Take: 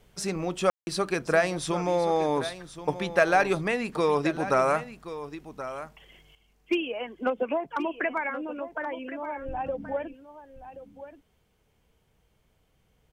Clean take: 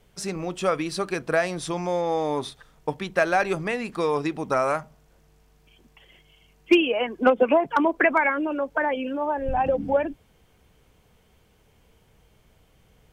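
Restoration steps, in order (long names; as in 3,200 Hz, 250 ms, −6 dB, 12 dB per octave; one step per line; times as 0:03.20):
ambience match 0:00.70–0:00.87
echo removal 1,077 ms −13 dB
level correction +9 dB, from 0:06.35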